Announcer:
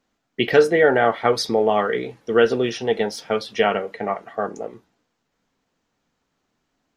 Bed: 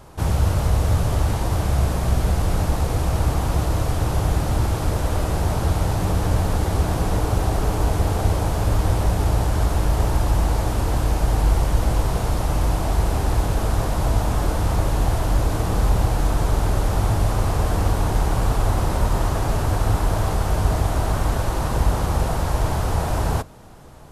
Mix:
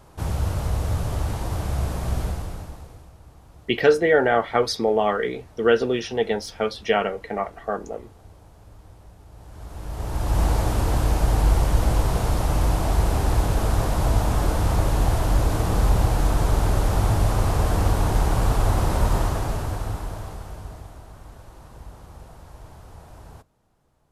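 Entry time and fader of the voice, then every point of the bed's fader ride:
3.30 s, −2.0 dB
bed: 0:02.22 −5.5 dB
0:03.17 −28 dB
0:09.28 −28 dB
0:10.42 −0.5 dB
0:19.15 −0.5 dB
0:21.07 −22.5 dB

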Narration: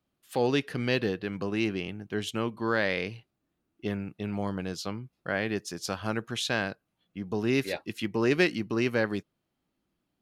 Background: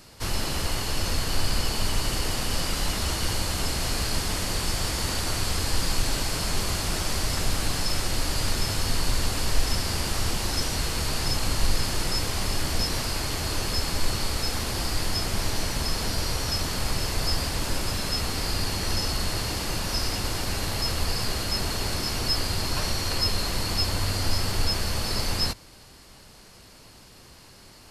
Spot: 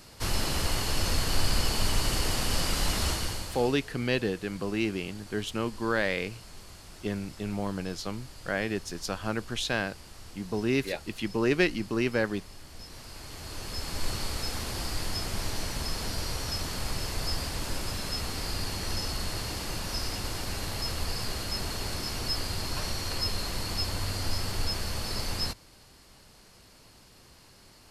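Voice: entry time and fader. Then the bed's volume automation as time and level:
3.20 s, −0.5 dB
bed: 0:03.08 −1 dB
0:03.91 −21 dB
0:12.69 −21 dB
0:14.08 −5.5 dB

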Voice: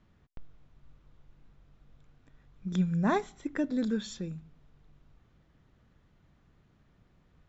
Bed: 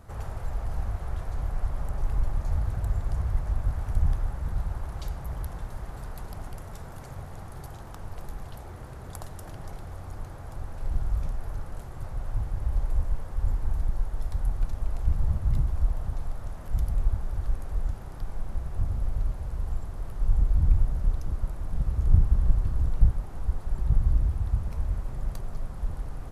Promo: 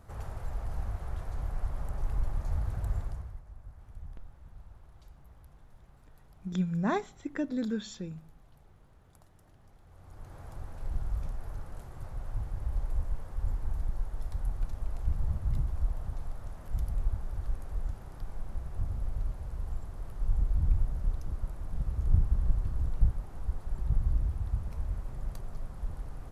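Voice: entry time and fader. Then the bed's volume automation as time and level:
3.80 s, −2.0 dB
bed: 0:03.00 −4.5 dB
0:03.44 −21 dB
0:09.75 −21 dB
0:10.39 −5.5 dB

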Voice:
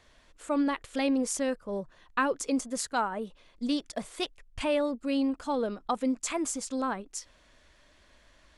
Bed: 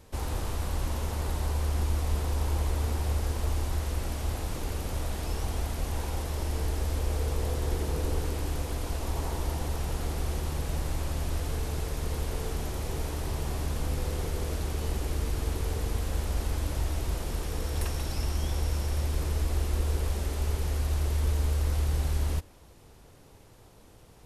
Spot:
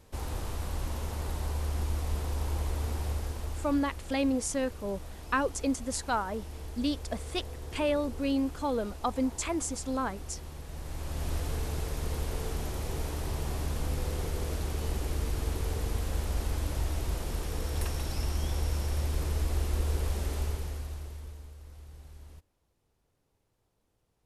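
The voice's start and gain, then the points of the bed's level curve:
3.15 s, −1.0 dB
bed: 0:03.05 −3.5 dB
0:04.00 −11.5 dB
0:10.67 −11.5 dB
0:11.29 −1.5 dB
0:20.38 −1.5 dB
0:21.55 −21.5 dB

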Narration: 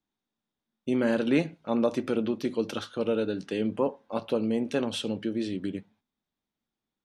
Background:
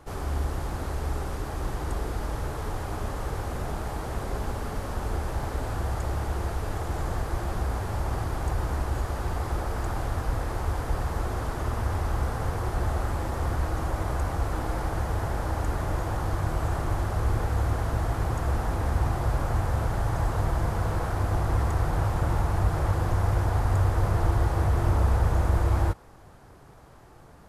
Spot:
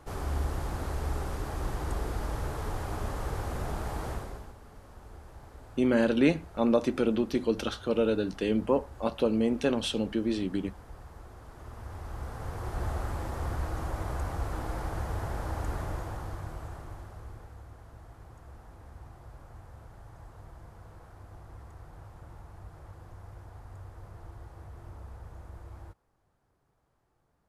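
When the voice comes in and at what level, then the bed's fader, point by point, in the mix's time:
4.90 s, +1.0 dB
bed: 0:04.10 −2.5 dB
0:04.56 −19 dB
0:11.40 −19 dB
0:12.84 −5.5 dB
0:15.78 −5.5 dB
0:17.66 −23 dB

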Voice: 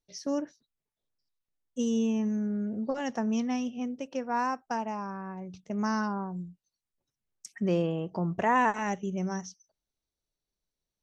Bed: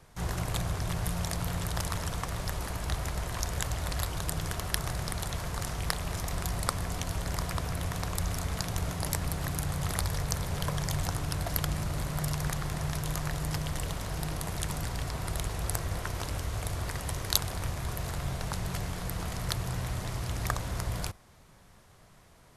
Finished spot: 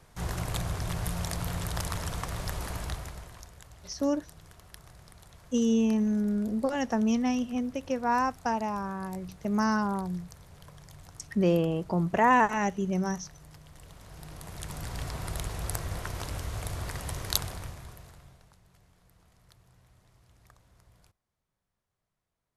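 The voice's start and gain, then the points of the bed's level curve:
3.75 s, +3.0 dB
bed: 0:02.80 −0.5 dB
0:03.57 −19 dB
0:13.67 −19 dB
0:15.01 −1.5 dB
0:17.43 −1.5 dB
0:18.61 −28 dB

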